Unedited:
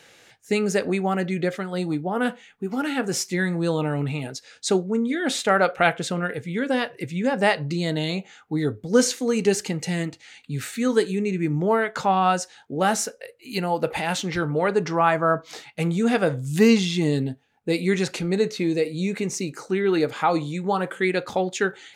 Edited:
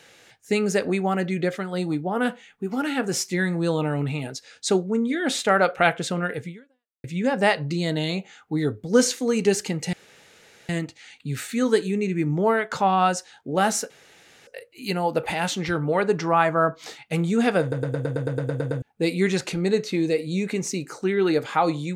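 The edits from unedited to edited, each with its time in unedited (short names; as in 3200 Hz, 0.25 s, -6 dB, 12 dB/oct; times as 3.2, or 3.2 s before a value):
6.47–7.04 fade out exponential
9.93 insert room tone 0.76 s
13.14 insert room tone 0.57 s
16.28 stutter in place 0.11 s, 11 plays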